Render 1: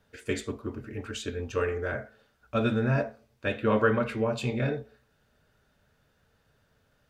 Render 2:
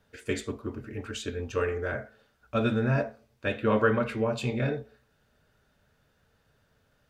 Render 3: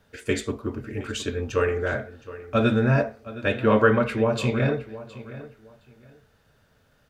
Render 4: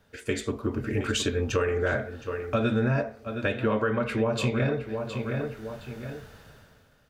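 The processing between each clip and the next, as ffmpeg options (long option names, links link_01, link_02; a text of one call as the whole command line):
ffmpeg -i in.wav -af anull out.wav
ffmpeg -i in.wav -filter_complex "[0:a]asplit=2[link_01][link_02];[link_02]adelay=716,lowpass=frequency=3900:poles=1,volume=-16dB,asplit=2[link_03][link_04];[link_04]adelay=716,lowpass=frequency=3900:poles=1,volume=0.23[link_05];[link_01][link_03][link_05]amix=inputs=3:normalize=0,volume=5.5dB" out.wav
ffmpeg -i in.wav -af "dynaudnorm=framelen=130:gausssize=11:maxgain=16dB,alimiter=limit=-7.5dB:level=0:latency=1:release=391,acompressor=threshold=-25dB:ratio=2,volume=-1.5dB" out.wav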